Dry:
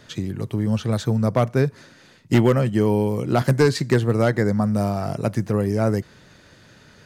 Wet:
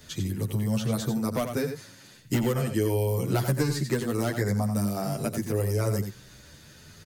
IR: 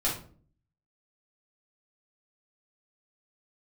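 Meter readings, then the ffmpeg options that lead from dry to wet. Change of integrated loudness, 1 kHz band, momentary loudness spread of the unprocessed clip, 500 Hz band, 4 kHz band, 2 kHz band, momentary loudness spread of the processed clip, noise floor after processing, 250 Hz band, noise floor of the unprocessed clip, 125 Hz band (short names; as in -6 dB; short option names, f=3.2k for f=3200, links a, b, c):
-6.5 dB, -8.0 dB, 7 LU, -8.0 dB, -3.5 dB, -7.0 dB, 5 LU, -51 dBFS, -7.0 dB, -51 dBFS, -6.0 dB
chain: -filter_complex "[0:a]aemphasis=mode=production:type=75fm,asplit=2[a][b];[b]aecho=0:1:88:0.335[c];[a][c]amix=inputs=2:normalize=0,acrossover=split=220|1900[d][e][f];[d]acompressor=threshold=-31dB:ratio=4[g];[e]acompressor=threshold=-22dB:ratio=4[h];[f]acompressor=threshold=-31dB:ratio=4[i];[g][h][i]amix=inputs=3:normalize=0,lowshelf=f=150:g=11,asplit=2[j][k];[k]adelay=9.6,afreqshift=0.73[l];[j][l]amix=inputs=2:normalize=1,volume=-2dB"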